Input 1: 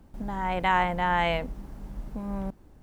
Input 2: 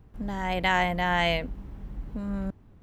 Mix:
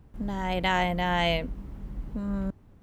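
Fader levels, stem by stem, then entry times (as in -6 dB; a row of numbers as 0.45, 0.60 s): -9.5, -1.0 dB; 0.00, 0.00 s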